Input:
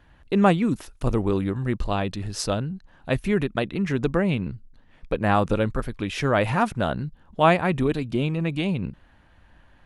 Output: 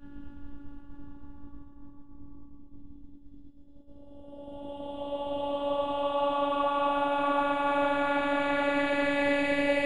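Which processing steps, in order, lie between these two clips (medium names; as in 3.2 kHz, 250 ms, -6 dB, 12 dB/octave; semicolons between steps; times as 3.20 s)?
in parallel at +1 dB: gain riding 0.5 s; on the sum: mains buzz 50 Hz, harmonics 8, -31 dBFS -7 dB/octave; reverse; compression 12:1, threshold -22 dBFS, peak gain reduction 16 dB; reverse; Paulstretch 33×, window 0.10 s, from 7.24 s; expander -36 dBFS; robot voice 285 Hz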